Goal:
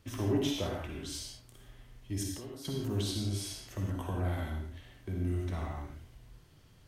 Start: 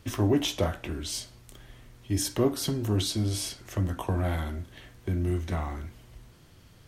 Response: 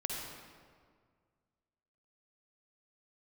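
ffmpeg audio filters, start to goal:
-filter_complex "[0:a]asettb=1/sr,asplit=3[a][b][c];[a]atrim=end=2.234[d];[b]atrim=start=2.23:end=2.65,asetpts=PTS-STARTPTS,afade=t=in:d=0.004:c=qsin,afade=t=out:st=0.416:d=0.004:c=qsin,acompressor=threshold=-38dB:ratio=4[e];[c]atrim=start=2.646[f];[d][e]acrossfade=d=0.004:c1=hsin:c2=qsin[g];[g][f]acrossfade=d=0.004:c1=qsin:c2=hsin[h];[1:a]atrim=start_sample=2205,afade=t=out:st=0.23:d=0.01,atrim=end_sample=10584[i];[h][i]afir=irnorm=-1:irlink=0,volume=-8dB"

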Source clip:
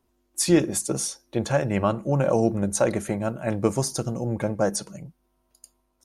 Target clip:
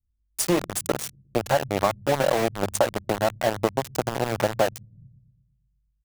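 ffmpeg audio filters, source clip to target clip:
-filter_complex "[0:a]firequalizer=gain_entry='entry(190,0);entry(710,14);entry(2100,1)':delay=0.05:min_phase=1,acompressor=threshold=-18dB:ratio=6,acrossover=split=120[a][b];[a]aecho=1:1:118|236|354|472|590|708|826|944:0.501|0.291|0.169|0.0978|0.0567|0.0329|0.0191|0.0111[c];[b]aeval=exprs='val(0)*gte(abs(val(0)),0.0841)':c=same[d];[c][d]amix=inputs=2:normalize=0"

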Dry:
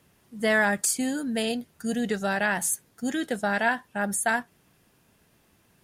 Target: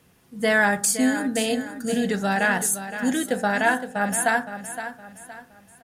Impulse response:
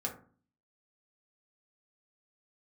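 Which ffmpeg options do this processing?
-filter_complex "[0:a]aecho=1:1:516|1032|1548|2064:0.282|0.101|0.0365|0.0131,asplit=2[a][b];[1:a]atrim=start_sample=2205[c];[b][c]afir=irnorm=-1:irlink=0,volume=-6dB[d];[a][d]amix=inputs=2:normalize=0"

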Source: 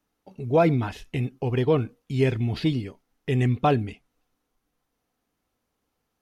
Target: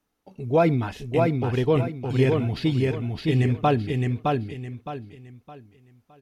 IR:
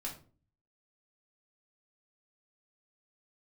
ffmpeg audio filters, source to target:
-af "aecho=1:1:614|1228|1842|2456:0.708|0.219|0.068|0.0211"

